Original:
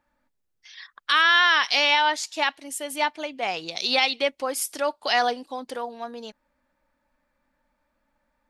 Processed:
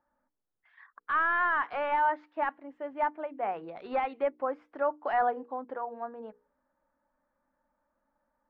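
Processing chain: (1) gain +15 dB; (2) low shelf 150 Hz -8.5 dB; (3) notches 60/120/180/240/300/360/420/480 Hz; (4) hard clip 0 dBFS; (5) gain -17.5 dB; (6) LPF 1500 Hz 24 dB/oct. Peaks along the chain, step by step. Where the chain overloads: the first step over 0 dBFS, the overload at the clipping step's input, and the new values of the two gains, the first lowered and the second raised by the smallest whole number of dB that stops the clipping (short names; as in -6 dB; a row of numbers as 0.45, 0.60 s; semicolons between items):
+7.5, +7.5, +7.5, 0.0, -17.5, -17.5 dBFS; step 1, 7.5 dB; step 1 +7 dB, step 5 -9.5 dB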